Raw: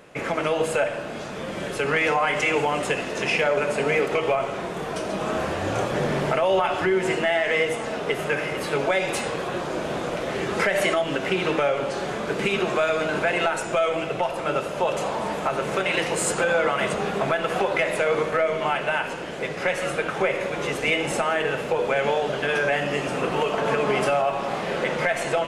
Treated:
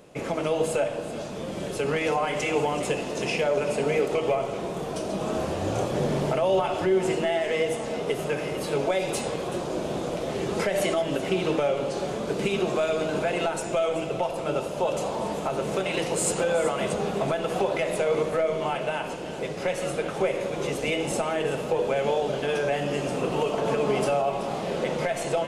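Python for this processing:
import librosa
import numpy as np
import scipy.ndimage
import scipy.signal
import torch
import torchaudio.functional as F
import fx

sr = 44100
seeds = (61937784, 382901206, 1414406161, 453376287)

p1 = fx.peak_eq(x, sr, hz=1700.0, db=-10.5, octaves=1.5)
y = p1 + fx.echo_single(p1, sr, ms=381, db=-14.0, dry=0)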